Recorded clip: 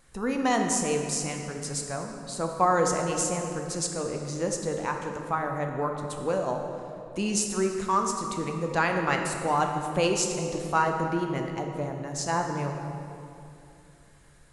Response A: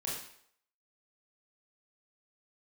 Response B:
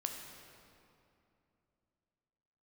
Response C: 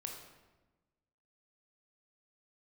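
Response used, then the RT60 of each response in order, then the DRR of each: B; 0.65, 2.8, 1.2 s; -5.5, 2.5, 1.0 dB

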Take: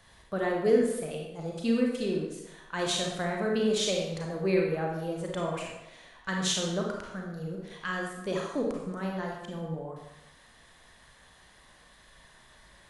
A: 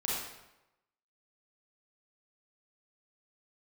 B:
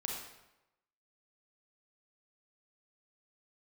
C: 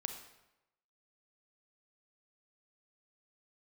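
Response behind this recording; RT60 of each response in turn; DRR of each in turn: B; 0.95, 0.95, 0.95 s; -6.0, -1.0, 5.5 dB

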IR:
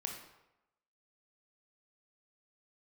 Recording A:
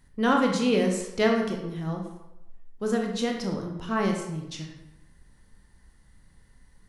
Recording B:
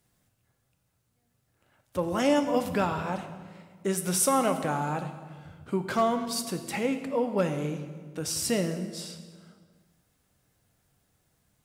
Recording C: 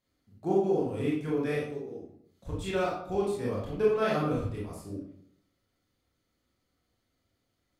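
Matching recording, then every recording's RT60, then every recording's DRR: A; 0.90, 1.6, 0.70 s; 1.0, 7.5, -6.0 dB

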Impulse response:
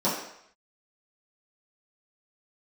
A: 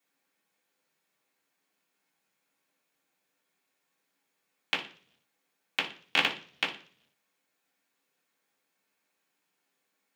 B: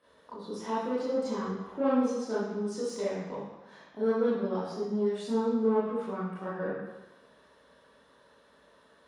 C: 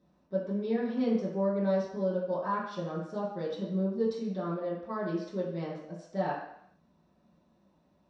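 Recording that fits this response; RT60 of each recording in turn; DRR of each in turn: C; 0.50, 1.1, 0.70 s; -8.0, -10.5, -10.5 dB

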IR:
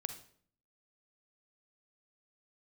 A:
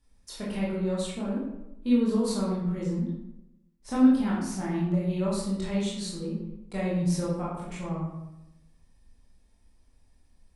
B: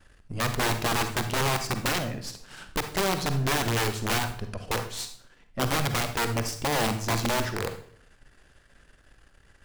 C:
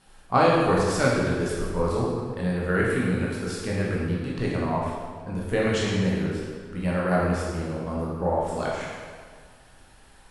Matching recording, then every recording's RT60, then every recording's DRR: B; 0.90, 0.55, 1.8 s; -6.5, 8.0, -5.5 dB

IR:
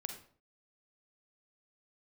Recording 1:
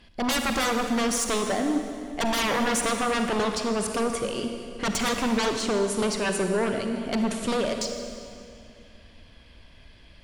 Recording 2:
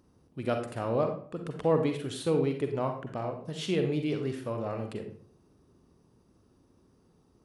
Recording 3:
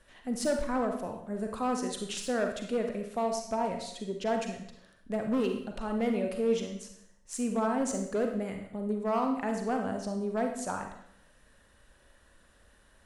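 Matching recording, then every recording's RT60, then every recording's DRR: 2; 2.4, 0.50, 0.70 s; 4.5, 5.0, 3.5 dB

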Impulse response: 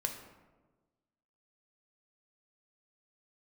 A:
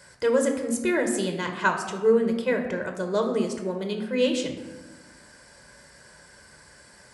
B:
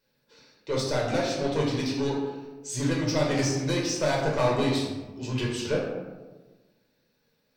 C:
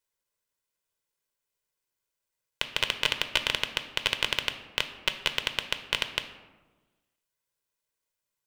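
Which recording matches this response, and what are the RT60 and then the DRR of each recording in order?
A; 1.3, 1.3, 1.3 s; 4.0, -3.5, 8.0 dB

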